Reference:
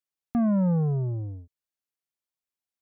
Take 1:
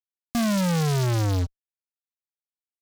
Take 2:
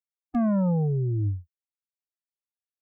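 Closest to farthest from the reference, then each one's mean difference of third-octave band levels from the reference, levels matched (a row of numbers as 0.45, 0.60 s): 2, 1; 2.5, 18.0 dB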